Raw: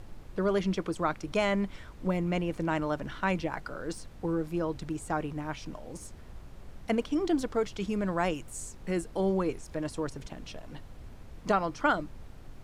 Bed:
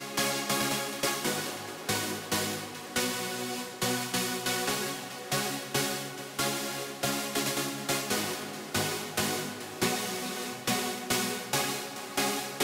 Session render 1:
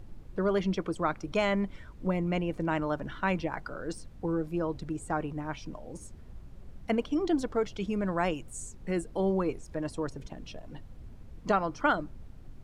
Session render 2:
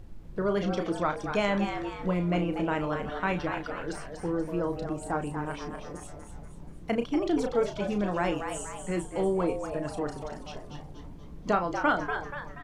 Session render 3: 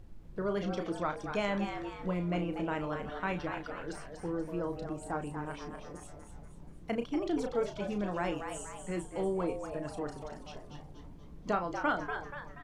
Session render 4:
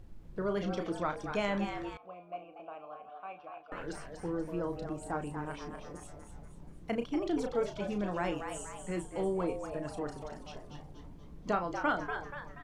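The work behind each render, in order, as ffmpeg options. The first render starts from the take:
-af "afftdn=nr=8:nf=-48"
-filter_complex "[0:a]asplit=2[a][b];[b]adelay=34,volume=-8dB[c];[a][c]amix=inputs=2:normalize=0,asplit=6[d][e][f][g][h][i];[e]adelay=240,afreqshift=140,volume=-7.5dB[j];[f]adelay=480,afreqshift=280,volume=-14.4dB[k];[g]adelay=720,afreqshift=420,volume=-21.4dB[l];[h]adelay=960,afreqshift=560,volume=-28.3dB[m];[i]adelay=1200,afreqshift=700,volume=-35.2dB[n];[d][j][k][l][m][n]amix=inputs=6:normalize=0"
-af "volume=-5.5dB"
-filter_complex "[0:a]asettb=1/sr,asplit=3[a][b][c];[a]atrim=end=1.974[d];[b]atrim=start=1.97:end=3.72,asetpts=PTS-STARTPTS,afade=t=in:d=0.004:c=qsin,afade=t=out:st=1.746:d=0.004:c=qsin,asplit=3[e][f][g];[e]bandpass=f=730:t=q:w=8,volume=0dB[h];[f]bandpass=f=1.09k:t=q:w=8,volume=-6dB[i];[g]bandpass=f=2.44k:t=q:w=8,volume=-9dB[j];[h][i][j]amix=inputs=3:normalize=0[k];[c]atrim=start=3.716[l];[d][k]acrossfade=d=0.004:c1=hsin:c2=qsin[m];[m][l]acrossfade=d=0.004:c1=qsin:c2=hsin"

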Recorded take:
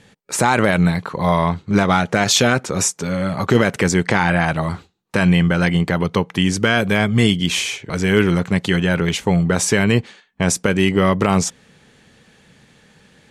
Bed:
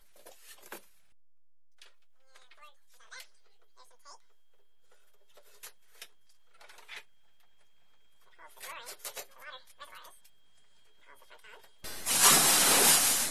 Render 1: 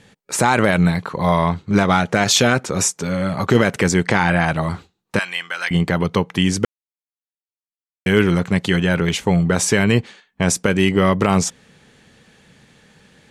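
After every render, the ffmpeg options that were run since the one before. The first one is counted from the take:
-filter_complex "[0:a]asettb=1/sr,asplit=3[a][b][c];[a]atrim=end=5.194[d];[b]atrim=start=5.19:end=5.71,asetpts=PTS-STARTPTS,afade=t=in:d=0.004:c=qsin,afade=t=out:st=0.516:d=0.004:c=qsin,highpass=1.3k[e];[c]atrim=start=5.706[f];[d][e]acrossfade=d=0.004:c1=hsin:c2=qsin[g];[g][f]acrossfade=d=0.004:c1=qsin:c2=hsin,asplit=3[h][i][j];[h]atrim=end=6.65,asetpts=PTS-STARTPTS,afade=t=out:st=6.646:d=0.004:c=hsin[k];[i]atrim=start=6.65:end=8.06,asetpts=PTS-STARTPTS,volume=0[l];[j]atrim=start=8.06,asetpts=PTS-STARTPTS,afade=t=in:d=0.004:c=hsin[m];[k][l][m]concat=n=3:v=0:a=1"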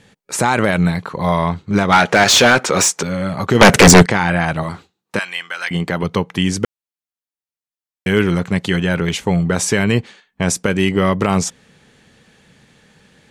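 -filter_complex "[0:a]asettb=1/sr,asplit=3[a][b][c];[a]atrim=end=1.924[d];[b]atrim=start=1.92:end=3.03,asetpts=PTS-STARTPTS,afade=t=in:d=0.004:c=qsin,afade=t=out:st=1.106:d=0.004:c=qsin,asplit=2[e][f];[f]highpass=f=720:p=1,volume=19dB,asoftclip=type=tanh:threshold=-1.5dB[g];[e][g]amix=inputs=2:normalize=0,lowpass=f=4.6k:p=1,volume=-6dB[h];[c]atrim=start=3.026[i];[d][h]acrossfade=d=0.004:c1=hsin:c2=qsin[j];[j][i]acrossfade=d=0.004:c1=qsin:c2=hsin,asettb=1/sr,asplit=3[k][l][m];[k]atrim=end=3.614[n];[l]atrim=start=3.61:end=4.06,asetpts=PTS-STARTPTS,afade=t=in:d=0.004:c=qsin,afade=t=out:st=0.446:d=0.004:c=qsin,aeval=exprs='0.841*sin(PI/2*4.47*val(0)/0.841)':c=same[o];[m]atrim=start=4.056[p];[n][o]acrossfade=d=0.004:c1=hsin:c2=qsin[q];[q][p]acrossfade=d=0.004:c1=qsin:c2=hsin,asettb=1/sr,asplit=3[r][s][t];[r]atrim=end=4.634[u];[s]atrim=start=4.63:end=6.03,asetpts=PTS-STARTPTS,afade=t=in:d=0.004:c=qsin,afade=t=out:st=1.396:d=0.004:c=qsin,highpass=f=170:p=1[v];[t]atrim=start=6.026[w];[u][v]acrossfade=d=0.004:c1=hsin:c2=qsin[x];[x][w]acrossfade=d=0.004:c1=qsin:c2=hsin"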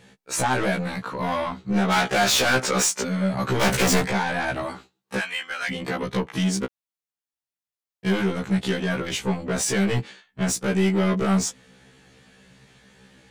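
-af "asoftclip=type=tanh:threshold=-15.5dB,afftfilt=real='re*1.73*eq(mod(b,3),0)':imag='im*1.73*eq(mod(b,3),0)':win_size=2048:overlap=0.75"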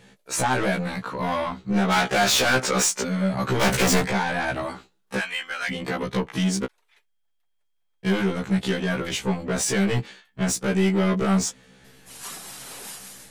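-filter_complex "[1:a]volume=-16dB[a];[0:a][a]amix=inputs=2:normalize=0"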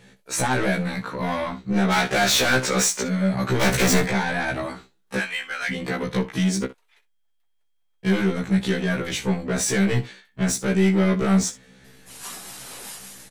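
-af "aecho=1:1:16|62:0.335|0.168"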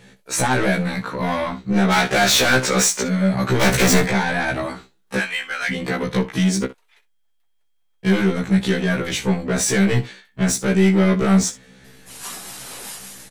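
-af "volume=3.5dB"

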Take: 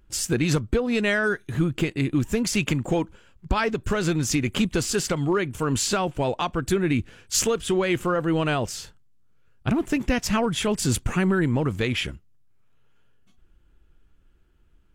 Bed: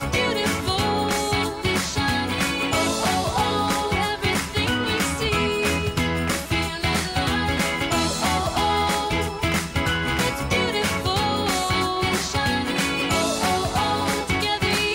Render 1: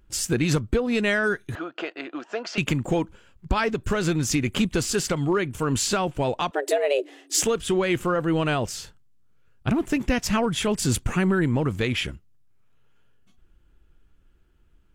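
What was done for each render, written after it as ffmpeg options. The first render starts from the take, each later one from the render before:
-filter_complex "[0:a]asettb=1/sr,asplit=3[a][b][c];[a]atrim=end=1.554[d];[b]atrim=start=1.55:end=2.58,asetpts=PTS-STARTPTS,afade=t=in:d=0.004:c=qsin,afade=t=out:st=1.026:d=0.004:c=qsin,highpass=f=390:w=0.5412,highpass=f=390:w=1.3066,equalizer=f=410:t=q:w=4:g=-5,equalizer=f=680:t=q:w=4:g=10,equalizer=f=1.4k:t=q:w=4:g=7,equalizer=f=2.2k:t=q:w=4:g=-6,equalizer=f=3.7k:t=q:w=4:g=-6,lowpass=f=4.6k:w=0.5412,lowpass=f=4.6k:w=1.3066[e];[c]atrim=start=2.576[f];[d][e]acrossfade=d=0.004:c1=hsin:c2=qsin[g];[g][f]acrossfade=d=0.004:c1=qsin:c2=hsin,asettb=1/sr,asplit=3[h][i][j];[h]atrim=end=6.514[k];[i]atrim=start=6.51:end=7.43,asetpts=PTS-STARTPTS,afade=t=in:d=0.004:c=qsin,afade=t=out:st=0.916:d=0.004:c=qsin,afreqshift=280[l];[j]atrim=start=7.426[m];[k][l]acrossfade=d=0.004:c1=hsin:c2=qsin[n];[n][m]acrossfade=d=0.004:c1=qsin:c2=hsin"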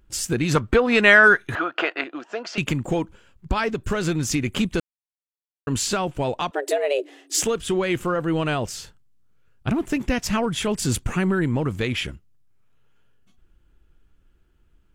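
-filter_complex "[0:a]asettb=1/sr,asplit=3[a][b][c];[a]atrim=end=0.554[d];[b]atrim=start=0.55:end=2.04,asetpts=PTS-STARTPTS,afade=t=in:d=0.004:c=qsin,afade=t=out:st=1.486:d=0.004:c=qsin,equalizer=f=1.4k:w=0.39:g=12.5[e];[c]atrim=start=2.036[f];[d][e]acrossfade=d=0.004:c1=hsin:c2=qsin[g];[g][f]acrossfade=d=0.004:c1=qsin:c2=hsin,asplit=3[h][i][j];[h]atrim=end=4.8,asetpts=PTS-STARTPTS,afade=t=out:st=4.796:d=0.004:c=hsin[k];[i]atrim=start=4.8:end=5.67,asetpts=PTS-STARTPTS,volume=0[l];[j]atrim=start=5.67,asetpts=PTS-STARTPTS,afade=t=in:d=0.004:c=hsin[m];[k][l][m]concat=n=3:v=0:a=1"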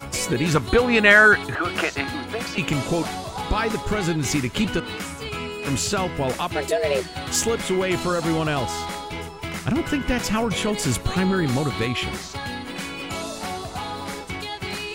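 -filter_complex "[1:a]volume=-8.5dB[a];[0:a][a]amix=inputs=2:normalize=0"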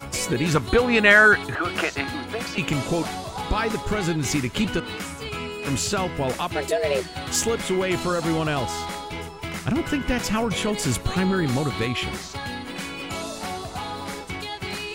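-af "volume=-1dB"

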